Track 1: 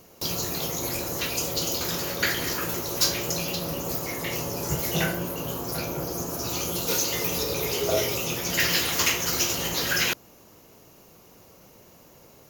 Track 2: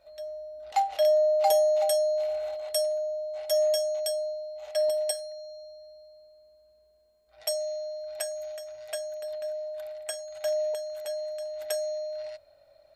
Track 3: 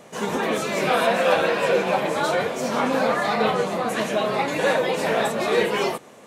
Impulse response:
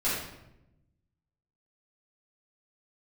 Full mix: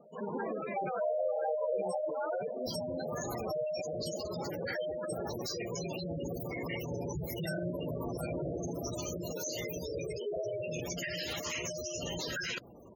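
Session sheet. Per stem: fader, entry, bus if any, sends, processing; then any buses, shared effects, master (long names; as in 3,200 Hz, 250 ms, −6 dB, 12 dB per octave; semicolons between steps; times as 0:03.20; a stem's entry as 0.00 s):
+2.0 dB, 2.45 s, bus A, no send, no processing
−11.5 dB, 0.00 s, no bus, no send, no processing
−10.0 dB, 0.00 s, bus A, no send, low-pass filter 9,800 Hz 12 dB per octave
bus A: 0.0 dB, brickwall limiter −25 dBFS, peak gain reduction 18.5 dB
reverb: not used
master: gate on every frequency bin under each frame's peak −10 dB strong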